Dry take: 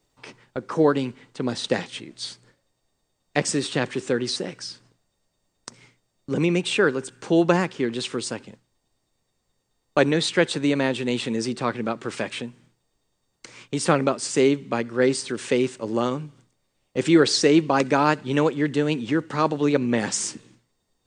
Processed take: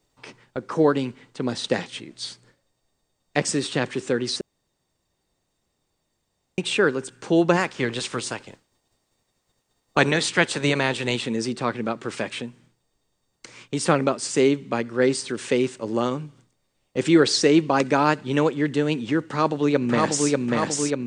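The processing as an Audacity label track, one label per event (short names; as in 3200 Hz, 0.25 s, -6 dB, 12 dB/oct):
4.410000	6.580000	room tone
7.560000	11.150000	spectral limiter ceiling under each frame's peak by 13 dB
19.240000	20.310000	echo throw 0.59 s, feedback 70%, level -1.5 dB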